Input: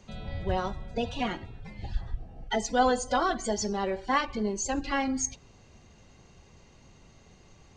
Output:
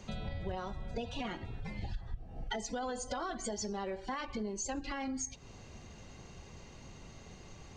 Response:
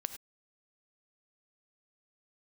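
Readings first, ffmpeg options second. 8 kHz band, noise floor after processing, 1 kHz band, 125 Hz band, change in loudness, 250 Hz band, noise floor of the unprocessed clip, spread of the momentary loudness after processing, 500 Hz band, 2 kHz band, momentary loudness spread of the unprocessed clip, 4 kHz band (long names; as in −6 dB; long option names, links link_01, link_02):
−7.0 dB, −53 dBFS, −12.0 dB, −5.0 dB, −10.0 dB, −8.5 dB, −57 dBFS, 15 LU, −10.0 dB, −10.5 dB, 14 LU, −8.0 dB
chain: -af "alimiter=limit=-21dB:level=0:latency=1:release=22,acompressor=threshold=-40dB:ratio=6,volume=4dB"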